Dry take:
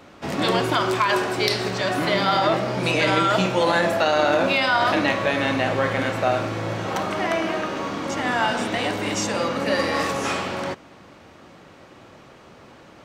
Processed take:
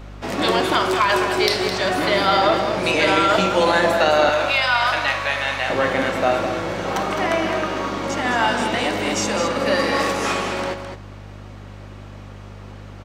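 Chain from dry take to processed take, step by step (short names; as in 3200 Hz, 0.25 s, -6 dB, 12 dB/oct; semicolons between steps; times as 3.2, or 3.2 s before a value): HPF 220 Hz 12 dB/oct, from 4.29 s 870 Hz, from 5.7 s 190 Hz; hum 50 Hz, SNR 16 dB; echo 0.211 s -8.5 dB; reverb RT60 0.60 s, pre-delay 5 ms, DRR 17.5 dB; gain +2.5 dB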